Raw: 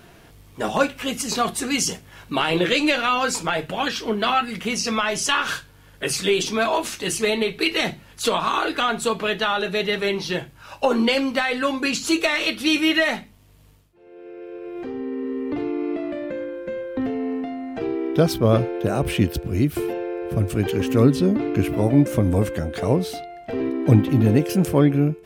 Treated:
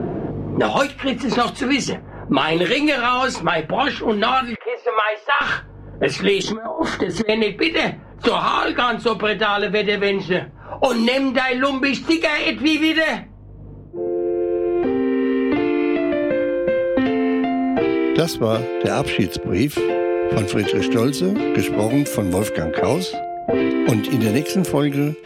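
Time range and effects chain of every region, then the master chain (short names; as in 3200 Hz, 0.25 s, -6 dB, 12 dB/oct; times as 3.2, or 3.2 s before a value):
4.55–5.41 elliptic high-pass 480 Hz, stop band 60 dB + air absorption 240 m
6.42–7.29 negative-ratio compressor -28 dBFS, ratio -0.5 + Butterworth band-stop 2600 Hz, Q 3.5
whole clip: low-pass opened by the level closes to 390 Hz, open at -15 dBFS; low shelf 140 Hz -9 dB; three-band squash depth 100%; gain +3.5 dB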